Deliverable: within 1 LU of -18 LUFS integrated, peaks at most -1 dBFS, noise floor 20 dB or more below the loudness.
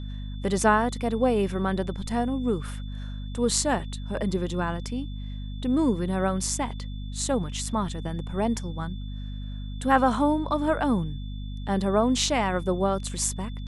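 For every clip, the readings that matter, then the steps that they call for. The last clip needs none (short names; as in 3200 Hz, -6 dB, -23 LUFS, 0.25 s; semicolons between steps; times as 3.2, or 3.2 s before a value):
hum 50 Hz; harmonics up to 250 Hz; hum level -32 dBFS; steady tone 3500 Hz; tone level -50 dBFS; loudness -26.5 LUFS; peak -6.0 dBFS; loudness target -18.0 LUFS
-> de-hum 50 Hz, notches 5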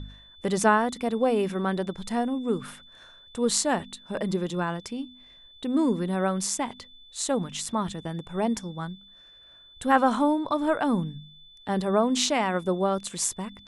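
hum none; steady tone 3500 Hz; tone level -50 dBFS
-> notch 3500 Hz, Q 30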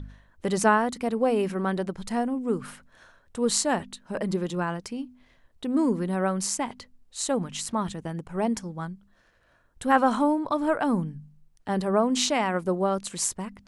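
steady tone none; loudness -27.0 LUFS; peak -6.5 dBFS; loudness target -18.0 LUFS
-> gain +9 dB; limiter -1 dBFS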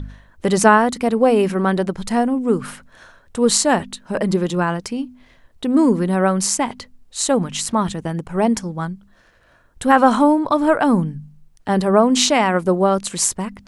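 loudness -18.0 LUFS; peak -1.0 dBFS; noise floor -54 dBFS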